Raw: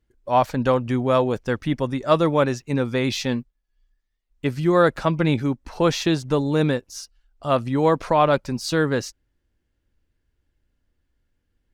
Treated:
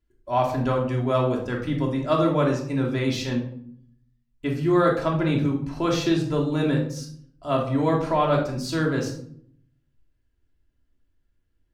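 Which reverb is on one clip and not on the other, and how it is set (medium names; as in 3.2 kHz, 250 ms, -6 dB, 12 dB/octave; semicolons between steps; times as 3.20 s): simulated room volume 1000 m³, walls furnished, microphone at 3 m; trim -7 dB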